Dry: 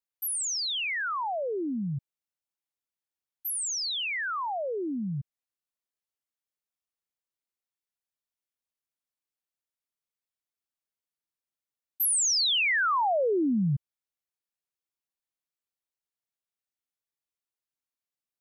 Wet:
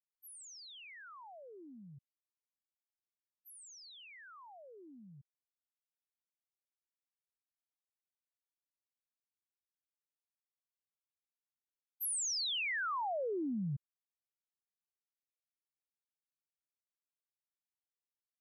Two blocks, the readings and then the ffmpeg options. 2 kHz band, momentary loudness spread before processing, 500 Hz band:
−13.0 dB, 11 LU, −13.0 dB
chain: -af "agate=range=-33dB:threshold=-20dB:ratio=3:detection=peak,volume=-5dB"

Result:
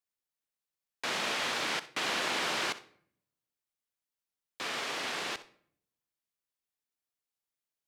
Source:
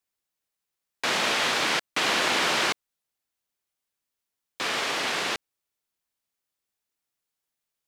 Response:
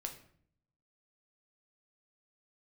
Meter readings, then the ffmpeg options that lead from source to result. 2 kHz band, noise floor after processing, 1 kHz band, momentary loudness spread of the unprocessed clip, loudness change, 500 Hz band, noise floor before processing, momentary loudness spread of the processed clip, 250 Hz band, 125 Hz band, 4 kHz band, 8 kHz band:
−8.0 dB, below −85 dBFS, −8.0 dB, 9 LU, −8.0 dB, −8.0 dB, −85 dBFS, 9 LU, −8.0 dB, −8.0 dB, −8.0 dB, −8.0 dB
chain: -filter_complex "[0:a]asplit=2[link_01][link_02];[1:a]atrim=start_sample=2205,asetrate=41895,aresample=44100,adelay=63[link_03];[link_02][link_03]afir=irnorm=-1:irlink=0,volume=-13dB[link_04];[link_01][link_04]amix=inputs=2:normalize=0,volume=-8dB"

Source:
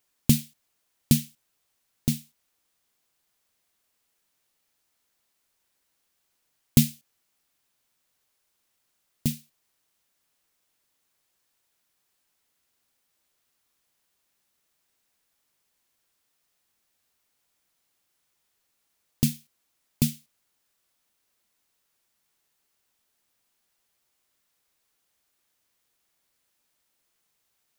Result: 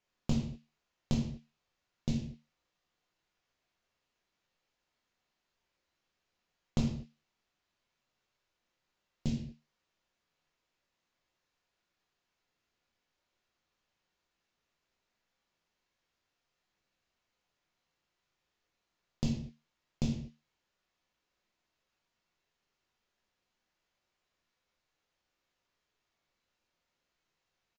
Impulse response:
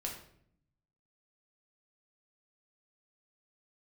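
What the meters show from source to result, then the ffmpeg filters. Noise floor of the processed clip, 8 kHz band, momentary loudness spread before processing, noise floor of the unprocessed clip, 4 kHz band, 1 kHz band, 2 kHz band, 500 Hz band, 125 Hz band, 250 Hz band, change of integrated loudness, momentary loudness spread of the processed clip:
−85 dBFS, −19.5 dB, 11 LU, −75 dBFS, −12.0 dB, can't be measured, −9.5 dB, −2.5 dB, −8.5 dB, −8.0 dB, −10.5 dB, 16 LU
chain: -filter_complex "[0:a]acompressor=threshold=-24dB:ratio=4,aresample=16000,aresample=44100[link_01];[1:a]atrim=start_sample=2205,afade=type=out:start_time=0.31:duration=0.01,atrim=end_sample=14112[link_02];[link_01][link_02]afir=irnorm=-1:irlink=0,adynamicsmooth=sensitivity=6.5:basefreq=5800,asplit=2[link_03][link_04];[link_04]adelay=21,volume=-13.5dB[link_05];[link_03][link_05]amix=inputs=2:normalize=0,volume=-3dB"

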